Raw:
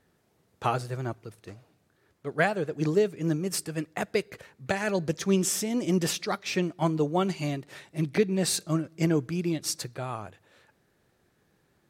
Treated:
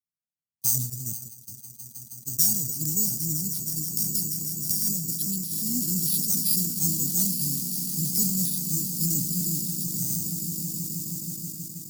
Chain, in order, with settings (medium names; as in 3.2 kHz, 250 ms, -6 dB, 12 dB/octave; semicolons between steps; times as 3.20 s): echo with a slow build-up 159 ms, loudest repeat 8, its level -15 dB; 3.46–5.52 s: compression 3:1, threshold -26 dBFS, peak gain reduction 6.5 dB; careless resampling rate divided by 6×, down filtered, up hold; treble shelf 2.5 kHz +11 dB; band-stop 680 Hz, Q 12; valve stage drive 17 dB, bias 0.5; FFT filter 250 Hz 0 dB, 400 Hz -23 dB, 950 Hz -23 dB, 1.4 kHz -29 dB, 2.3 kHz -29 dB, 4.7 kHz +3 dB, 12 kHz +13 dB; gate -32 dBFS, range -34 dB; high-pass 56 Hz; decay stretcher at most 56 dB/s